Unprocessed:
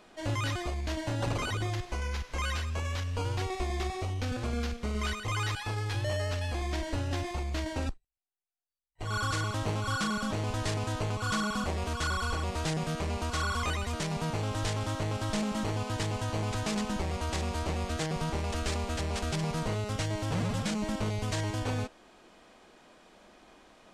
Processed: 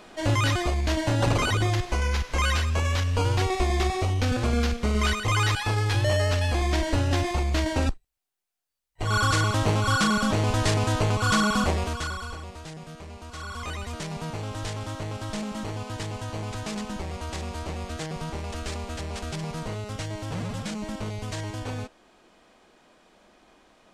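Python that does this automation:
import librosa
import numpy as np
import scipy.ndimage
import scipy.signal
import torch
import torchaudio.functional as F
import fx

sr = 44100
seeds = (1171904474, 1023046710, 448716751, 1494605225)

y = fx.gain(x, sr, db=fx.line((11.69, 8.5), (12.17, -2.5), (12.64, -9.0), (13.23, -9.0), (13.8, -1.0)))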